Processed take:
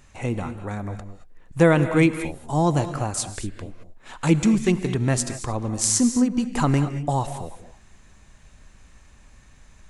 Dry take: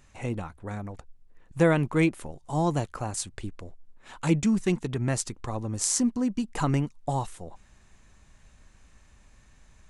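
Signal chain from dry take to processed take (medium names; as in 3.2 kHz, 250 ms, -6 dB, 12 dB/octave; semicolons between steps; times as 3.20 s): gated-style reverb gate 250 ms rising, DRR 9.5 dB; trim +5 dB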